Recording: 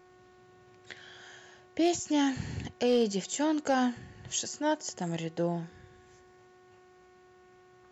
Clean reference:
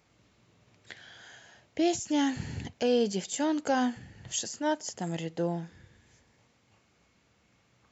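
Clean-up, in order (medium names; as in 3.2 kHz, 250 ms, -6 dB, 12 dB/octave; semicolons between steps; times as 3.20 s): clip repair -18 dBFS; de-hum 366.1 Hz, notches 5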